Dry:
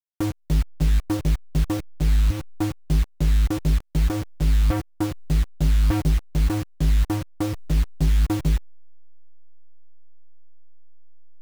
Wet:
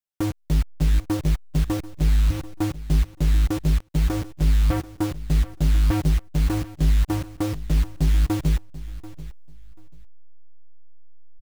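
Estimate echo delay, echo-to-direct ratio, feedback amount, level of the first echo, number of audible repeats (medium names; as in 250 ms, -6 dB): 737 ms, -17.0 dB, 20%, -17.0 dB, 2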